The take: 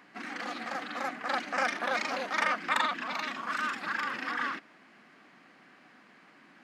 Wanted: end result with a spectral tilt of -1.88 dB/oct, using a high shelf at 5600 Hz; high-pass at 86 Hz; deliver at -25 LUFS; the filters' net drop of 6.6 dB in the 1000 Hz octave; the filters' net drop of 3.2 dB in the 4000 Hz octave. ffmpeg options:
-af "highpass=86,equalizer=f=1k:t=o:g=-9,equalizer=f=4k:t=o:g=-6.5,highshelf=f=5.6k:g=8,volume=10.5dB"

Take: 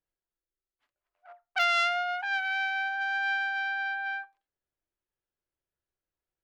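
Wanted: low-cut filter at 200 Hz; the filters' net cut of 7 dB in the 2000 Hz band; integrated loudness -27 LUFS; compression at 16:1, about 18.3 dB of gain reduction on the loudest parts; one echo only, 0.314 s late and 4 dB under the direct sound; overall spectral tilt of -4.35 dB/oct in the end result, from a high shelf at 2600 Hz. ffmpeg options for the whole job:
-af "highpass=200,equalizer=f=2k:t=o:g=-6.5,highshelf=f=2.6k:g=-8.5,acompressor=threshold=-44dB:ratio=16,aecho=1:1:314:0.631,volume=20.5dB"

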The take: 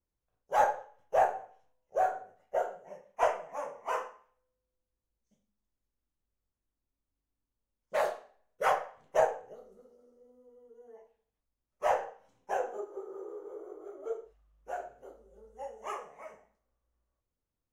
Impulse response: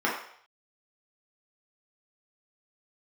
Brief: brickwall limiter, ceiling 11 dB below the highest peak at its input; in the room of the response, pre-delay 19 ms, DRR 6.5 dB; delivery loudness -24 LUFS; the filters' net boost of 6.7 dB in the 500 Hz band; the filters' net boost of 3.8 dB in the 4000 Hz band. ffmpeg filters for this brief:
-filter_complex "[0:a]equalizer=f=500:t=o:g=8.5,equalizer=f=4k:t=o:g=5.5,alimiter=limit=-19dB:level=0:latency=1,asplit=2[a][b];[1:a]atrim=start_sample=2205,adelay=19[c];[b][c]afir=irnorm=-1:irlink=0,volume=-20dB[d];[a][d]amix=inputs=2:normalize=0,volume=8.5dB"

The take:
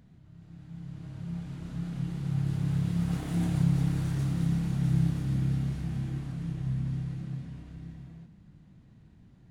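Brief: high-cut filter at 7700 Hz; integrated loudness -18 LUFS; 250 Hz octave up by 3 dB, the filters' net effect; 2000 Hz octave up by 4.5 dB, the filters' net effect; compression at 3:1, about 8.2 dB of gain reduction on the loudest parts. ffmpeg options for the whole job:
-af "lowpass=7.7k,equalizer=f=250:t=o:g=6,equalizer=f=2k:t=o:g=5.5,acompressor=threshold=-30dB:ratio=3,volume=16dB"

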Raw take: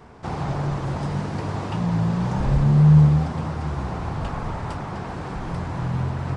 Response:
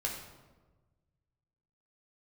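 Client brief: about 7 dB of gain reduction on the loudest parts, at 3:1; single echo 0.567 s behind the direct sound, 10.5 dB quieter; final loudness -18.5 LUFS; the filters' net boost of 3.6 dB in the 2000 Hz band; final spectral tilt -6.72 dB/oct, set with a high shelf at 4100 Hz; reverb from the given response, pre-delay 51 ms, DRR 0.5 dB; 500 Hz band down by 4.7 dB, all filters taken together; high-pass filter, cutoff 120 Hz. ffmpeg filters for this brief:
-filter_complex "[0:a]highpass=120,equalizer=f=500:t=o:g=-6.5,equalizer=f=2k:t=o:g=4.5,highshelf=f=4.1k:g=3,acompressor=threshold=-21dB:ratio=3,aecho=1:1:567:0.299,asplit=2[a][b];[1:a]atrim=start_sample=2205,adelay=51[c];[b][c]afir=irnorm=-1:irlink=0,volume=-3.5dB[d];[a][d]amix=inputs=2:normalize=0,volume=6dB"

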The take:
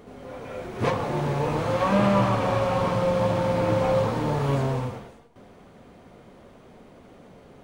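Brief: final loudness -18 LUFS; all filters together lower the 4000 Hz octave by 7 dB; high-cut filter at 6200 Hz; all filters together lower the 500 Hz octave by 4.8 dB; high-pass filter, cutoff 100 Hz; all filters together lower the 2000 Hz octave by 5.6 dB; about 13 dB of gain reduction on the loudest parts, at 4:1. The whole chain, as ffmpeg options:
-af "highpass=100,lowpass=6.2k,equalizer=f=500:t=o:g=-5,equalizer=f=2k:t=o:g=-5.5,equalizer=f=4k:t=o:g=-6.5,acompressor=threshold=-35dB:ratio=4,volume=19.5dB"

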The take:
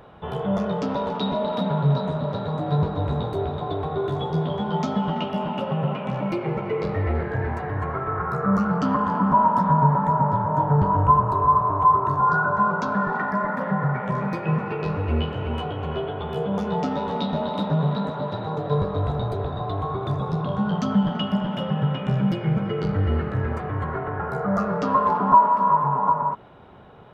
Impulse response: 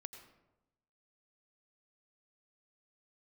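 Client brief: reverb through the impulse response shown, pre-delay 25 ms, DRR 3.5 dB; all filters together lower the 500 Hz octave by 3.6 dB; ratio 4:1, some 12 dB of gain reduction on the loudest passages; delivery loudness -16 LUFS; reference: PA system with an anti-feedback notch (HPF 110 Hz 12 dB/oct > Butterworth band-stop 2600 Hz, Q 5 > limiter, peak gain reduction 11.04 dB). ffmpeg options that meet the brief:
-filter_complex "[0:a]equalizer=f=500:t=o:g=-4.5,acompressor=threshold=-25dB:ratio=4,asplit=2[a][b];[1:a]atrim=start_sample=2205,adelay=25[c];[b][c]afir=irnorm=-1:irlink=0,volume=1.5dB[d];[a][d]amix=inputs=2:normalize=0,highpass=110,asuperstop=centerf=2600:order=8:qfactor=5,volume=17.5dB,alimiter=limit=-8dB:level=0:latency=1"

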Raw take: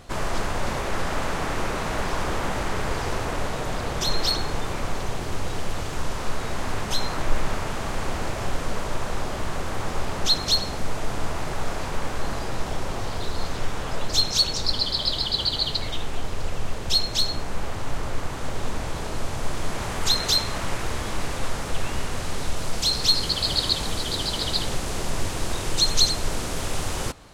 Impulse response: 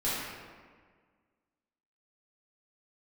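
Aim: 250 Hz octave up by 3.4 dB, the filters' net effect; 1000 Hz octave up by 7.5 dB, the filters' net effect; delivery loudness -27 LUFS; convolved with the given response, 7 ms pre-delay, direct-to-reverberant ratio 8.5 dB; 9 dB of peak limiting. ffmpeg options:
-filter_complex "[0:a]equalizer=f=250:t=o:g=4,equalizer=f=1k:t=o:g=9,alimiter=limit=-14.5dB:level=0:latency=1,asplit=2[a][b];[1:a]atrim=start_sample=2205,adelay=7[c];[b][c]afir=irnorm=-1:irlink=0,volume=-17.5dB[d];[a][d]amix=inputs=2:normalize=0,volume=-1.5dB"

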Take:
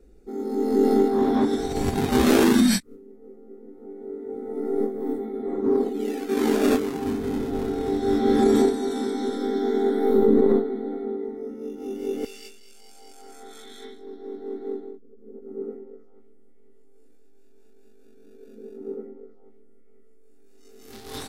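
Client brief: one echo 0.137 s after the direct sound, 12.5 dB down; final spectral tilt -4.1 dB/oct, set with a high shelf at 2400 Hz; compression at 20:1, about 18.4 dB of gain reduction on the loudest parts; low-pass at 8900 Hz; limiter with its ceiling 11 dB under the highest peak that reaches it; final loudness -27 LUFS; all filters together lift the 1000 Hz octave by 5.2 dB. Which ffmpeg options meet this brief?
-af "lowpass=8.9k,equalizer=f=1k:t=o:g=6.5,highshelf=f=2.4k:g=5,acompressor=threshold=-31dB:ratio=20,alimiter=level_in=7dB:limit=-24dB:level=0:latency=1,volume=-7dB,aecho=1:1:137:0.237,volume=13dB"

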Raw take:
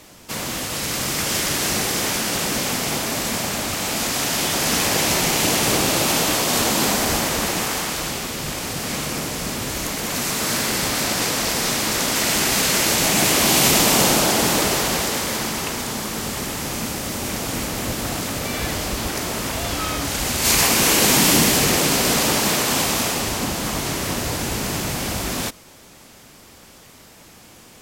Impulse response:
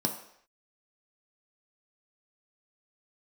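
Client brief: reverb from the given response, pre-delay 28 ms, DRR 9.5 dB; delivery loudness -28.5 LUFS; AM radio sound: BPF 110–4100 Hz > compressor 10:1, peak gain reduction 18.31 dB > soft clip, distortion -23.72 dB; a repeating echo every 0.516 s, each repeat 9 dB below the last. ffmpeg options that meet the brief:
-filter_complex "[0:a]aecho=1:1:516|1032|1548|2064:0.355|0.124|0.0435|0.0152,asplit=2[a][b];[1:a]atrim=start_sample=2205,adelay=28[c];[b][c]afir=irnorm=-1:irlink=0,volume=-15.5dB[d];[a][d]amix=inputs=2:normalize=0,highpass=110,lowpass=4.1k,acompressor=threshold=-30dB:ratio=10,asoftclip=threshold=-23.5dB,volume=5dB"

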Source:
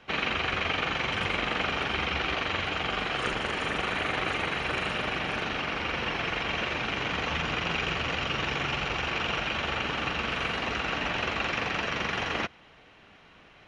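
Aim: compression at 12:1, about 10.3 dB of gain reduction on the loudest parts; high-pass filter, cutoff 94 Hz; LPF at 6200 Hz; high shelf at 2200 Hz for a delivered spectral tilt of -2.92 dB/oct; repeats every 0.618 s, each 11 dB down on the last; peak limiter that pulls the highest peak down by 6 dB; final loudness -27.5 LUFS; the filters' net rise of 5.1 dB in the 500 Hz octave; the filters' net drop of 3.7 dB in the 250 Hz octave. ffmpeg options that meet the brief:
-af "highpass=94,lowpass=6.2k,equalizer=f=250:t=o:g=-8.5,equalizer=f=500:t=o:g=8,highshelf=f=2.2k:g=5.5,acompressor=threshold=-33dB:ratio=12,alimiter=level_in=4dB:limit=-24dB:level=0:latency=1,volume=-4dB,aecho=1:1:618|1236|1854:0.282|0.0789|0.0221,volume=9.5dB"

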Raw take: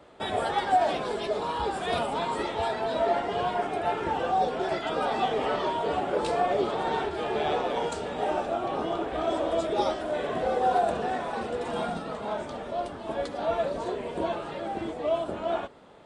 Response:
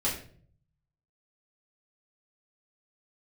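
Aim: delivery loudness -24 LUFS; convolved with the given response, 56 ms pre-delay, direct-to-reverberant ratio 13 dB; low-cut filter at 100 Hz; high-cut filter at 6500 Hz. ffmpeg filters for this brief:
-filter_complex "[0:a]highpass=100,lowpass=6.5k,asplit=2[a][b];[1:a]atrim=start_sample=2205,adelay=56[c];[b][c]afir=irnorm=-1:irlink=0,volume=-20.5dB[d];[a][d]amix=inputs=2:normalize=0,volume=4.5dB"

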